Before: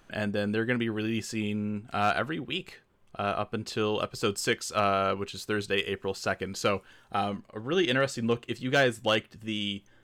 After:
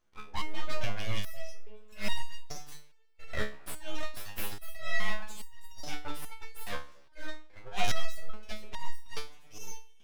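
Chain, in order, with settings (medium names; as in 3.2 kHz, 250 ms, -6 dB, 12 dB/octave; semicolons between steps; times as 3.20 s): slow attack 145 ms; spectral noise reduction 19 dB; 1.71–3.28 s: tilt EQ +3.5 dB/octave; on a send at -18 dB: reverberation RT60 1.6 s, pre-delay 4 ms; on the sum: wow and flutter 16 cents; full-wave rectifier; resonator arpeggio 2.4 Hz 71–930 Hz; trim +11 dB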